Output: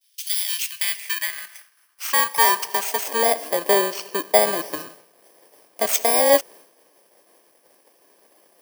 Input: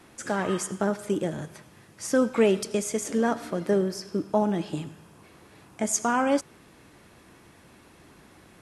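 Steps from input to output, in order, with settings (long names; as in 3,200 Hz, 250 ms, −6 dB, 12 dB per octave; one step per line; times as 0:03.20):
samples in bit-reversed order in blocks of 32 samples
high-pass filter sweep 3,500 Hz → 550 Hz, 0:00.29–0:03.40
downward expander −47 dBFS
level +5.5 dB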